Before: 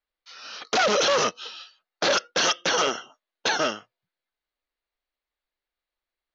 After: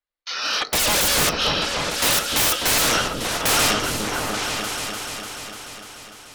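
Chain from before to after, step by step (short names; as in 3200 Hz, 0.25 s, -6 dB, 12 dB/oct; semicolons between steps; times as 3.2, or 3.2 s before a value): gate -57 dBFS, range -21 dB; sine folder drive 15 dB, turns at -14 dBFS; on a send: repeats that get brighter 0.296 s, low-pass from 400 Hz, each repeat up 2 oct, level 0 dB; on the sum: FDN reverb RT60 0.47 s, high-frequency decay 0.45×, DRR 14.5 dB; gain -2 dB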